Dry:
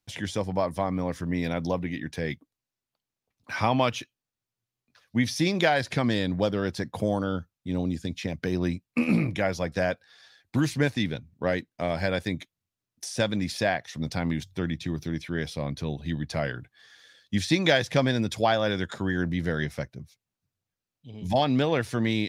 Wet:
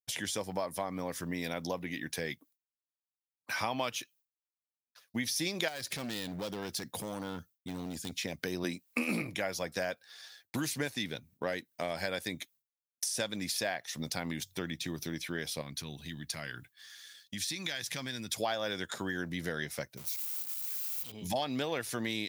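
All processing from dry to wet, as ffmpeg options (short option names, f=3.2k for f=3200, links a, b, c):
-filter_complex "[0:a]asettb=1/sr,asplit=3[a][b][c];[a]atrim=end=5.684[d];[b]atrim=start=5.68:end=8.13,asetpts=PTS-STARTPTS,afade=t=in:d=0.004:c=qsin,afade=t=out:st=2.446:d=0.004:c=qsin,equalizer=f=920:t=o:w=1.7:g=-6.5,acompressor=threshold=-28dB:ratio=2.5:attack=3.2:release=140:knee=1:detection=peak,asoftclip=type=hard:threshold=-28.5dB[e];[c]atrim=start=8.126[f];[d][e]acrossfade=d=0.004:c1=hsin:c2=qsin[g];[g][f]acrossfade=d=0.004:c1=qsin:c2=hsin,asettb=1/sr,asplit=3[h][i][j];[h]atrim=end=8.644[k];[i]atrim=start=8.64:end=9.22,asetpts=PTS-STARTPTS,afade=t=in:d=0.004:c=qsin,afade=t=out:st=0.576:d=0.004:c=qsin,highpass=180,acontrast=33[l];[j]atrim=start=9.216[m];[k][l]acrossfade=d=0.004:c1=hsin:c2=qsin[n];[n][m]acrossfade=d=0.004:c1=qsin:c2=hsin,asettb=1/sr,asplit=3[o][p][q];[o]atrim=end=15.614[r];[p]atrim=start=15.61:end=18.33,asetpts=PTS-STARTPTS,afade=t=in:d=0.004:c=qsin,afade=t=out:st=2.716:d=0.004:c=qsin,equalizer=f=560:t=o:w=1.5:g=-11,acompressor=threshold=-34dB:ratio=2.5:attack=3.2:release=140:knee=1:detection=peak[s];[q]atrim=start=18.326[t];[r][s]acrossfade=d=0.004:c1=hsin:c2=qsin[u];[u][t]acrossfade=d=0.004:c1=qsin:c2=hsin,asettb=1/sr,asplit=3[v][w][x];[v]atrim=end=19.974[y];[w]atrim=start=19.97:end=21.12,asetpts=PTS-STARTPTS,afade=t=in:d=0.004:c=qsin,afade=t=out:st=1.146:d=0.004:c=qsin,aeval=exprs='val(0)+0.5*0.00501*sgn(val(0))':c=same,tiltshelf=f=730:g=-6,bandreject=f=1.7k:w=10[z];[x]atrim=start=21.116[aa];[y][z]acrossfade=d=0.004:c1=hsin:c2=qsin[ab];[ab][aa]acrossfade=d=0.004:c1=qsin:c2=hsin,aemphasis=mode=production:type=bsi,agate=range=-33dB:threshold=-53dB:ratio=3:detection=peak,acompressor=threshold=-34dB:ratio=2.5"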